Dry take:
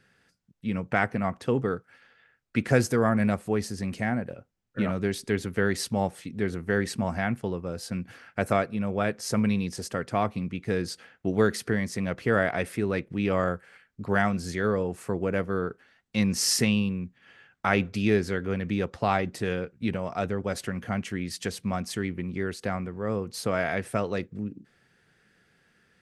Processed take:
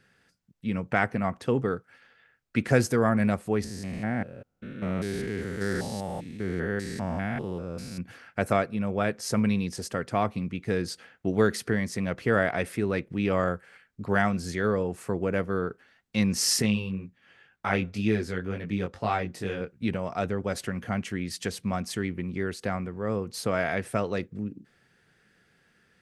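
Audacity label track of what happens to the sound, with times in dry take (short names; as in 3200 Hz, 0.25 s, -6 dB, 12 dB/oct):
3.640000	8.010000	stepped spectrum every 0.2 s
16.620000	19.610000	chorus 2 Hz, delay 18 ms, depth 4.2 ms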